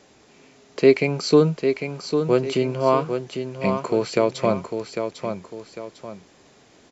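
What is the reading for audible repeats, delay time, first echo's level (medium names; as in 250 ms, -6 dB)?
2, 800 ms, -7.0 dB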